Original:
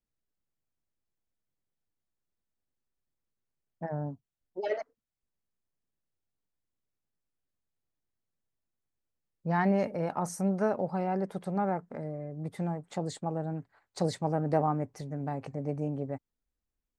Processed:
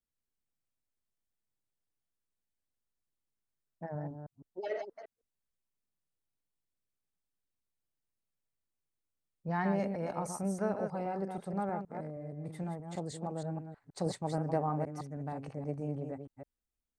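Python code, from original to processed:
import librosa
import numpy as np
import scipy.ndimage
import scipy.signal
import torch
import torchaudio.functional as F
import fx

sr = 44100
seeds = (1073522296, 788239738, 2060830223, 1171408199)

y = fx.reverse_delay(x, sr, ms=158, wet_db=-6.0)
y = fx.peak_eq(y, sr, hz=8700.0, db=6.0, octaves=0.22)
y = y * librosa.db_to_amplitude(-5.5)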